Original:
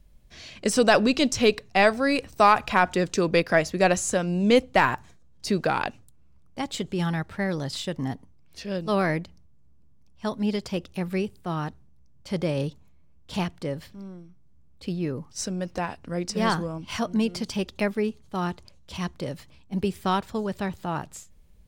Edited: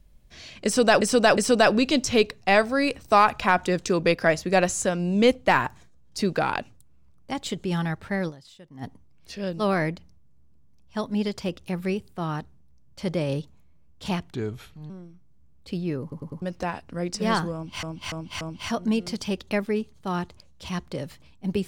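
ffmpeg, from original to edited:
-filter_complex "[0:a]asplit=14[s0][s1][s2][s3][s4][s5][s6][s7][s8][s9][s10][s11][s12][s13];[s0]atrim=end=1.012[s14];[s1]atrim=start=0.648:end=1.012[s15];[s2]atrim=start=0.648:end=7.83,asetpts=PTS-STARTPTS,afade=t=out:st=6.912:d=0.27:c=exp:silence=0.125893[s16];[s3]atrim=start=7.83:end=7.85,asetpts=PTS-STARTPTS,volume=0.126[s17];[s4]atrim=start=7.85:end=13.624,asetpts=PTS-STARTPTS,afade=t=in:d=0.27:c=exp:silence=0.125893[s18];[s5]atrim=start=13.62:end=14.05,asetpts=PTS-STARTPTS,asetrate=33957,aresample=44100,atrim=end_sample=24627,asetpts=PTS-STARTPTS[s19];[s6]atrim=start=14.046:end=15.272[s20];[s7]atrim=start=15.168:end=15.272[s21];[s8]atrim=start=15.168:end=15.272[s22];[s9]atrim=start=15.168:end=15.272[s23];[s10]atrim=start=15.568:end=16.982[s24];[s11]atrim=start=16.688:end=16.982[s25];[s12]atrim=start=16.688:end=16.982[s26];[s13]atrim=start=16.688[s27];[s14][s15]acrossfade=d=0.004:c1=hsin:c2=hsin[s28];[s16][s17][s18]concat=n=3:v=0:a=1[s29];[s28][s29]acrossfade=d=0.004:c1=hsin:c2=hsin[s30];[s30][s19]acrossfade=d=0.004:c1=hsin:c2=hsin[s31];[s31][s20]acrossfade=d=0.004:c1=hsin:c2=hsin[s32];[s32][s21]acrossfade=d=0.004:c1=hsin:c2=hsin[s33];[s33][s22]acrossfade=d=0.004:c1=hsin:c2=hsin[s34];[s34][s23]acrossfade=d=0.004:c1=hsin:c2=hsin[s35];[s35][s24]acrossfade=d=0.004:c1=hsin:c2=hsin[s36];[s36][s25]acrossfade=d=0.004:c1=hsin:c2=hsin[s37];[s37][s26]acrossfade=d=0.004:c1=hsin:c2=hsin[s38];[s38][s27]acrossfade=d=0.004:c1=hsin:c2=hsin"

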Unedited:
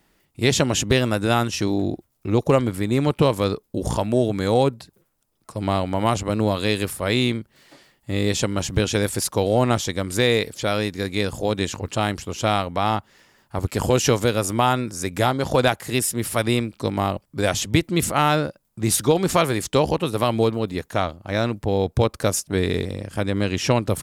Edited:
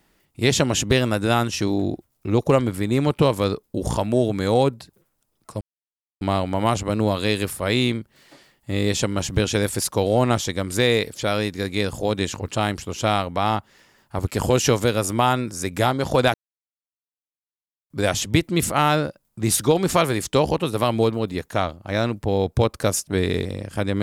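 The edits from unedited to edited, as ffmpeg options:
-filter_complex "[0:a]asplit=4[s0][s1][s2][s3];[s0]atrim=end=5.61,asetpts=PTS-STARTPTS,afade=t=out:st=5.606:d=0.004:c=hsin,apad=pad_dur=0.6[s4];[s1]atrim=start=5.61:end=15.74,asetpts=PTS-STARTPTS,afade=t=in:d=0.004:c=hsin,afade=t=out:st=10.126:d=0.004:c=hsin[s5];[s2]atrim=start=15.74:end=17.3,asetpts=PTS-STARTPTS,volume=0[s6];[s3]atrim=start=17.3,asetpts=PTS-STARTPTS,afade=t=in:d=0.004:c=hsin[s7];[s4][s5][s6][s7]concat=n=4:v=0:a=1"

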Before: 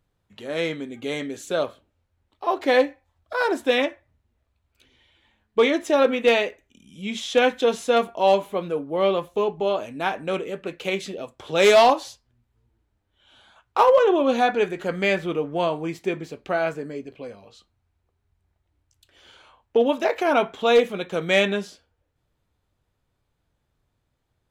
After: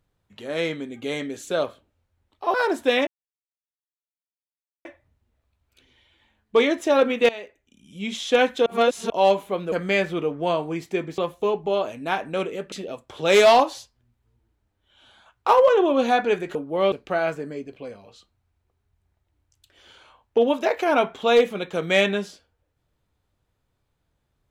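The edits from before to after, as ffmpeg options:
-filter_complex "[0:a]asplit=11[s0][s1][s2][s3][s4][s5][s6][s7][s8][s9][s10];[s0]atrim=end=2.542[s11];[s1]atrim=start=3.348:end=3.88,asetpts=PTS-STARTPTS,afade=t=out:st=0.528:d=0.004:c=hsin,apad=pad_dur=1.78[s12];[s2]atrim=start=3.88:end=6.32,asetpts=PTS-STARTPTS,afade=t=in:d=0.004:c=hsin,afade=t=out:st=2.436:d=0.004:c=hsin:silence=0.11885[s13];[s3]atrim=start=6.32:end=7.692,asetpts=PTS-STARTPTS,afade=t=in:d=0.75:silence=0.11885[s14];[s4]atrim=start=7.688:end=8.132,asetpts=PTS-STARTPTS,areverse[s15];[s5]atrim=start=8.128:end=8.752[s16];[s6]atrim=start=14.848:end=16.312[s17];[s7]atrim=start=9.118:end=10.662[s18];[s8]atrim=start=11.018:end=14.852[s19];[s9]atrim=start=8.748:end=9.122[s20];[s10]atrim=start=16.308[s21];[s12][s13][s14]concat=n=3:v=0:a=1[s22];[s11][s22]acrossfade=d=0.004:c1=hsin:c2=hsin[s23];[s23][s15]acrossfade=d=0.004:c1=hsin:c2=hsin[s24];[s24][s16]acrossfade=d=0.004:c1=hsin:c2=hsin[s25];[s25][s17]acrossfade=d=0.004:c1=hsin:c2=hsin[s26];[s26][s18]acrossfade=d=0.004:c1=hsin:c2=hsin[s27];[s27][s19]acrossfade=d=0.004:c1=hsin:c2=hsin[s28];[s28][s20]acrossfade=d=0.004:c1=hsin:c2=hsin[s29];[s29][s21]acrossfade=d=0.004:c1=hsin:c2=hsin"

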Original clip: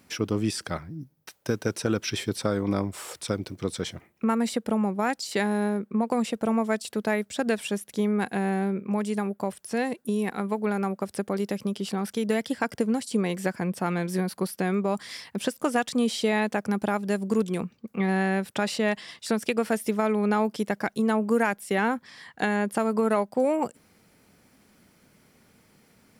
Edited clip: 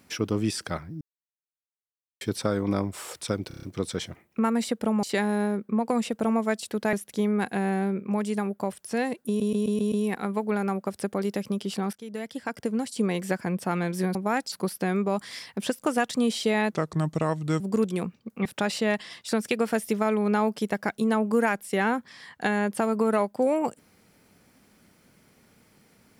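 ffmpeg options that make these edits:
-filter_complex "[0:a]asplit=21[s0][s1][s2][s3][s4][s5][s6][s7][s8][s9][s10][s11][s12][s13][s14][s15][s16][s17][s18][s19][s20];[s0]atrim=end=1.01,asetpts=PTS-STARTPTS,afade=t=out:st=1.006:d=0.004:c=hsin[s21];[s1]atrim=start=1.01:end=2.21,asetpts=PTS-STARTPTS,volume=0[s22];[s2]atrim=start=2.21:end=3.512,asetpts=PTS-STARTPTS,afade=t=in:d=0.004:c=hsin[s23];[s3]atrim=start=3.478:end=3.512[s24];[s4]atrim=start=3.478:end=3.512[s25];[s5]atrim=start=3.478:end=3.512[s26];[s6]atrim=start=3.478:end=3.512[s27];[s7]atrim=start=3.478:end=4.882[s28];[s8]atrim=start=5.248:end=7.152[s29];[s9]atrim=start=7.728:end=10.202[s30];[s10]atrim=start=10.068:end=10.202[s31];[s11]atrim=start=10.068:end=10.202[s32];[s12]atrim=start=10.068:end=10.202[s33];[s13]atrim=start=10.068:end=10.202[s34];[s14]atrim=start=10.068:end=12.08,asetpts=PTS-STARTPTS,afade=t=out:st=2.008:d=0.004:c=hsin:silence=0.158489[s35];[s15]atrim=start=12.08:end=14.302,asetpts=PTS-STARTPTS,afade=t=in:d=1.16:silence=0.158489[s36];[s16]atrim=start=4.878:end=5.252[s37];[s17]atrim=start=14.298:end=16.504[s38];[s18]atrim=start=16.5:end=17.18,asetpts=PTS-STARTPTS,asetrate=33957,aresample=44100,atrim=end_sample=38945,asetpts=PTS-STARTPTS[s39];[s19]atrim=start=17.176:end=18.032[s40];[s20]atrim=start=18.428[s41];[s21][s22][s23]concat=n=3:v=0:a=1[s42];[s42][s24]acrossfade=d=0.004:c1=hsin:c2=hsin[s43];[s43][s25]acrossfade=d=0.004:c1=hsin:c2=hsin[s44];[s44][s26]acrossfade=d=0.004:c1=hsin:c2=hsin[s45];[s45][s27]acrossfade=d=0.004:c1=hsin:c2=hsin[s46];[s46][s28]acrossfade=d=0.004:c1=hsin:c2=hsin[s47];[s47][s29]acrossfade=d=0.004:c1=hsin:c2=hsin[s48];[s48][s30]acrossfade=d=0.004:c1=hsin:c2=hsin[s49];[s49][s31]acrossfade=d=0.004:c1=hsin:c2=hsin[s50];[s50][s32]acrossfade=d=0.004:c1=hsin:c2=hsin[s51];[s51][s33]acrossfade=d=0.004:c1=hsin:c2=hsin[s52];[s52][s34]acrossfade=d=0.004:c1=hsin:c2=hsin[s53];[s35][s36]concat=n=2:v=0:a=1[s54];[s53][s54]acrossfade=d=0.004:c1=hsin:c2=hsin[s55];[s55][s37]acrossfade=d=0.004:c1=hsin:c2=hsin[s56];[s56][s38]acrossfade=d=0.004:c1=hsin:c2=hsin[s57];[s57][s39]acrossfade=d=0.004:c1=hsin:c2=hsin[s58];[s58][s40]acrossfade=d=0.004:c1=hsin:c2=hsin[s59];[s59][s41]acrossfade=d=0.004:c1=hsin:c2=hsin"

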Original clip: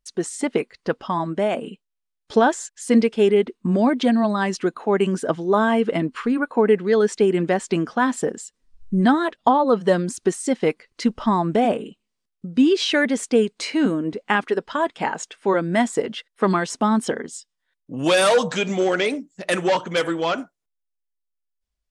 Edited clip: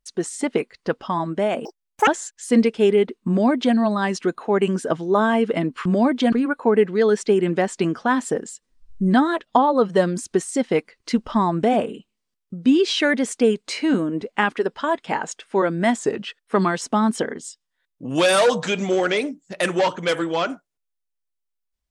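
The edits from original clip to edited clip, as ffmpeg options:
-filter_complex "[0:a]asplit=7[s0][s1][s2][s3][s4][s5][s6];[s0]atrim=end=1.654[s7];[s1]atrim=start=1.65:end=2.46,asetpts=PTS-STARTPTS,asetrate=84231,aresample=44100,atrim=end_sample=18702,asetpts=PTS-STARTPTS[s8];[s2]atrim=start=2.456:end=6.242[s9];[s3]atrim=start=3.668:end=4.142[s10];[s4]atrim=start=6.238:end=15.914[s11];[s5]atrim=start=15.91:end=16.32,asetpts=PTS-STARTPTS,asetrate=41013,aresample=44100[s12];[s6]atrim=start=16.316[s13];[s7][s8]acrossfade=d=0.004:c1=hsin:c2=hsin[s14];[s14][s9]acrossfade=d=0.004:c1=hsin:c2=hsin[s15];[s15][s10]acrossfade=d=0.004:c1=hsin:c2=hsin[s16];[s16][s11]acrossfade=d=0.004:c1=hsin:c2=hsin[s17];[s17][s12]acrossfade=d=0.004:c1=hsin:c2=hsin[s18];[s18][s13]acrossfade=d=0.004:c1=hsin:c2=hsin"

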